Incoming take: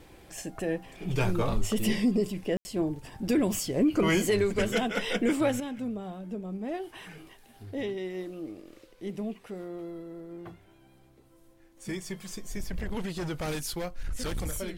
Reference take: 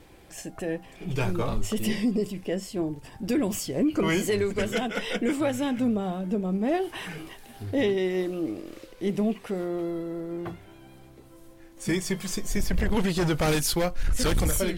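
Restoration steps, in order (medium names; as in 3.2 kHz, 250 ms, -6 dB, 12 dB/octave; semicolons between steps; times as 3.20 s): room tone fill 2.57–2.65 s; gain correction +9 dB, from 5.60 s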